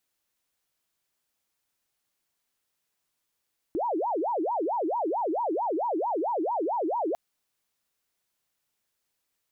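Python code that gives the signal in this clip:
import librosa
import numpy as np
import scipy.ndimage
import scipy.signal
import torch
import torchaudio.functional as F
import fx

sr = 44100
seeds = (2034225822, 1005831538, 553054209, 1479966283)

y = fx.siren(sr, length_s=3.4, kind='wail', low_hz=308.0, high_hz=972.0, per_s=4.5, wave='sine', level_db=-25.0)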